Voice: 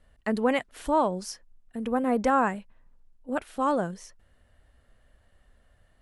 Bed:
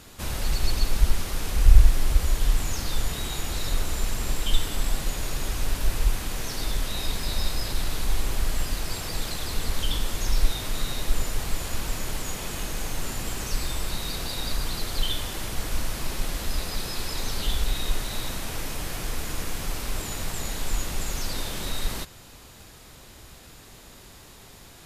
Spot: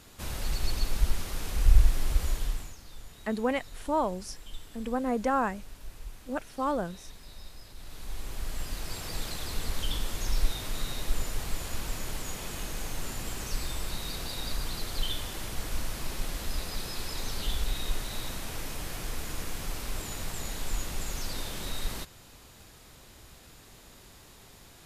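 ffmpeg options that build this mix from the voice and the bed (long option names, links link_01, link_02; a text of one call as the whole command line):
ffmpeg -i stem1.wav -i stem2.wav -filter_complex "[0:a]adelay=3000,volume=-4dB[link_01];[1:a]volume=9.5dB,afade=type=out:start_time=2.28:duration=0.48:silence=0.188365,afade=type=in:start_time=7.76:duration=1.38:silence=0.177828[link_02];[link_01][link_02]amix=inputs=2:normalize=0" out.wav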